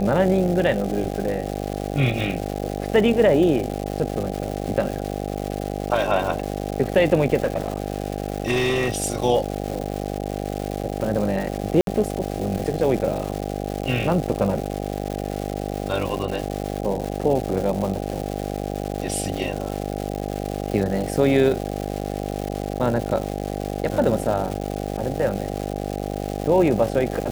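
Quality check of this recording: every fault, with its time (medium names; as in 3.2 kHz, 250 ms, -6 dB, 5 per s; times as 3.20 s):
buzz 50 Hz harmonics 16 -28 dBFS
crackle 380 per s -27 dBFS
7.44–9.06 s: clipped -17 dBFS
11.81–11.87 s: dropout 62 ms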